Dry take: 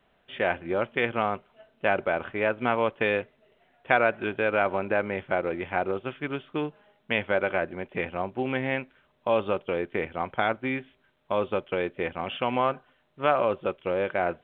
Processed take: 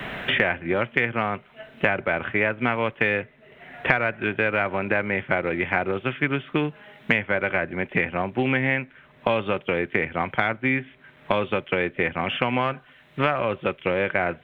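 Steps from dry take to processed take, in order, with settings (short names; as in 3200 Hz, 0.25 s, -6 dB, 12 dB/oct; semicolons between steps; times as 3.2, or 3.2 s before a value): one diode to ground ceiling -7 dBFS; ten-band EQ 125 Hz +8 dB, 250 Hz +3 dB, 2000 Hz +10 dB; three-band squash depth 100%; gain -1 dB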